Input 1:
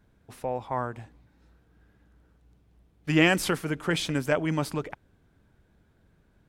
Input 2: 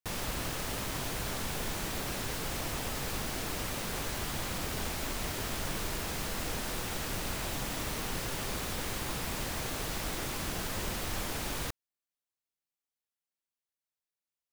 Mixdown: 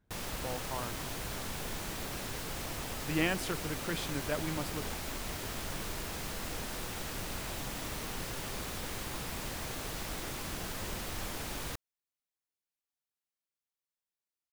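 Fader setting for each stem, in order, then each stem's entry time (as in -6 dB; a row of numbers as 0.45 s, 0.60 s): -10.0 dB, -3.5 dB; 0.00 s, 0.05 s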